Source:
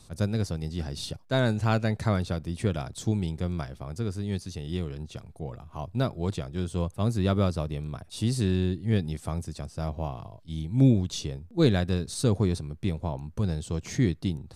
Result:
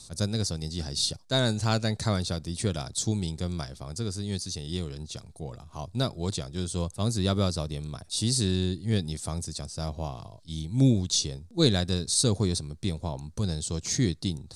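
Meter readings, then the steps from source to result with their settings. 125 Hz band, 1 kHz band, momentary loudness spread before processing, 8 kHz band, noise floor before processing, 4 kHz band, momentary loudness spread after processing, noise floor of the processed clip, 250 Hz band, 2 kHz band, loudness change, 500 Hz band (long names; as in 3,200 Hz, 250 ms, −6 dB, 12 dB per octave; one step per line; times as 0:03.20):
−1.5 dB, −1.5 dB, 11 LU, +11.0 dB, −52 dBFS, +8.5 dB, 13 LU, −51 dBFS, −1.5 dB, −1.5 dB, 0.0 dB, −1.5 dB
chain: flat-topped bell 6,100 Hz +12.5 dB
level −1.5 dB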